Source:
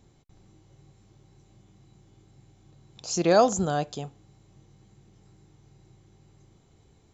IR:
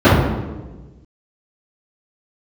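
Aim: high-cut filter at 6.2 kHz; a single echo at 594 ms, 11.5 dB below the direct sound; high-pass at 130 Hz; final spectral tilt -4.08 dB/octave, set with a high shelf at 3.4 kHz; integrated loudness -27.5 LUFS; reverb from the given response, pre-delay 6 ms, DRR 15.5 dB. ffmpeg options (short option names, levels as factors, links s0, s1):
-filter_complex "[0:a]highpass=130,lowpass=6200,highshelf=f=3400:g=7.5,aecho=1:1:594:0.266,asplit=2[s0][s1];[1:a]atrim=start_sample=2205,adelay=6[s2];[s1][s2]afir=irnorm=-1:irlink=0,volume=0.00501[s3];[s0][s3]amix=inputs=2:normalize=0,volume=0.708"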